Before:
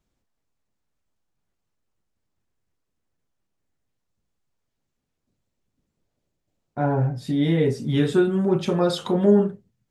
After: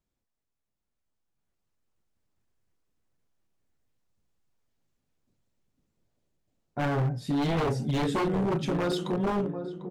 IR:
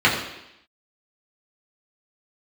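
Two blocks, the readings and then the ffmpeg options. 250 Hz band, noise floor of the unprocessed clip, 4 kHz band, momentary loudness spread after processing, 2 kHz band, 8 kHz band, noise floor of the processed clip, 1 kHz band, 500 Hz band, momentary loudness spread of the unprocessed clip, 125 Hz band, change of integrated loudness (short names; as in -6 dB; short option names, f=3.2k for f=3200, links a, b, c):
-7.5 dB, -79 dBFS, -4.5 dB, 5 LU, -2.0 dB, n/a, -84 dBFS, -1.0 dB, -8.5 dB, 6 LU, -5.5 dB, -7.0 dB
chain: -filter_complex "[0:a]dynaudnorm=f=230:g=13:m=8dB,asplit=2[a][b];[b]adelay=747,lowpass=f=970:p=1,volume=-9.5dB,asplit=2[c][d];[d]adelay=747,lowpass=f=970:p=1,volume=0.49,asplit=2[e][f];[f]adelay=747,lowpass=f=970:p=1,volume=0.49,asplit=2[g][h];[h]adelay=747,lowpass=f=970:p=1,volume=0.49,asplit=2[i][j];[j]adelay=747,lowpass=f=970:p=1,volume=0.49[k];[a][c][e][g][i][k]amix=inputs=6:normalize=0,aeval=exprs='0.224*(abs(mod(val(0)/0.224+3,4)-2)-1)':c=same,volume=-8.5dB"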